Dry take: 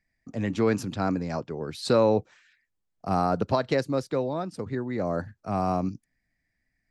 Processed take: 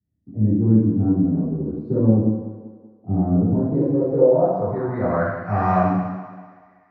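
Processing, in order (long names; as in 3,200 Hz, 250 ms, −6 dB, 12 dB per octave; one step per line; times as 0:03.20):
phase distortion by the signal itself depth 0.086 ms
convolution reverb RT60 1.1 s, pre-delay 3 ms, DRR −10.5 dB
low-pass filter sweep 280 Hz → 2,000 Hz, 0:03.72–0:05.42
low-shelf EQ 440 Hz −4.5 dB
feedback echo with a high-pass in the loop 191 ms, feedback 50%, high-pass 150 Hz, level −13 dB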